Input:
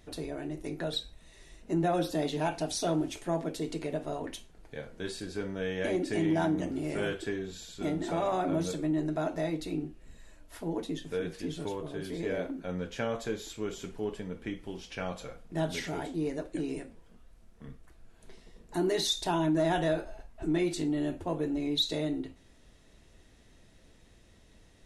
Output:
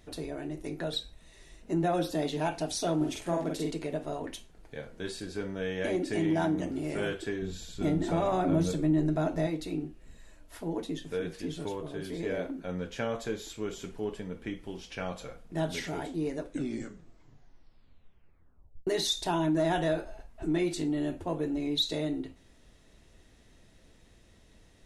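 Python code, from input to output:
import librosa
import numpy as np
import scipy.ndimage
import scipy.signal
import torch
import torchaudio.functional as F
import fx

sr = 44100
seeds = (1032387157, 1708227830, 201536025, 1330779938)

y = fx.doubler(x, sr, ms=46.0, db=-2.0, at=(3.0, 3.7), fade=0.02)
y = fx.low_shelf(y, sr, hz=220.0, db=10.0, at=(7.42, 9.47))
y = fx.edit(y, sr, fx.tape_stop(start_s=16.37, length_s=2.5), tone=tone)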